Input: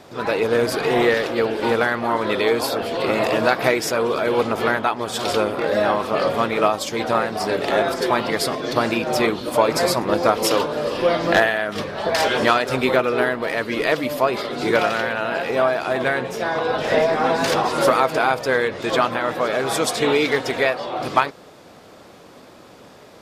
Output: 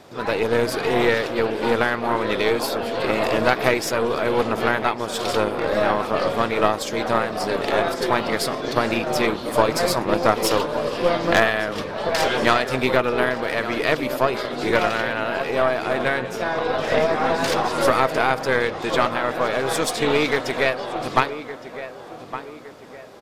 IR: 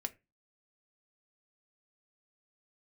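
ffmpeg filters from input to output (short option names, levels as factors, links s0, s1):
-filter_complex "[0:a]asplit=2[s0][s1];[s1]adelay=1163,lowpass=f=2300:p=1,volume=0.266,asplit=2[s2][s3];[s3]adelay=1163,lowpass=f=2300:p=1,volume=0.44,asplit=2[s4][s5];[s5]adelay=1163,lowpass=f=2300:p=1,volume=0.44,asplit=2[s6][s7];[s7]adelay=1163,lowpass=f=2300:p=1,volume=0.44[s8];[s0][s2][s4][s6][s8]amix=inputs=5:normalize=0,aeval=exprs='0.891*(cos(1*acos(clip(val(0)/0.891,-1,1)))-cos(1*PI/2))+0.178*(cos(4*acos(clip(val(0)/0.891,-1,1)))-cos(4*PI/2))+0.0708*(cos(6*acos(clip(val(0)/0.891,-1,1)))-cos(6*PI/2))+0.0355*(cos(8*acos(clip(val(0)/0.891,-1,1)))-cos(8*PI/2))':c=same,volume=0.794"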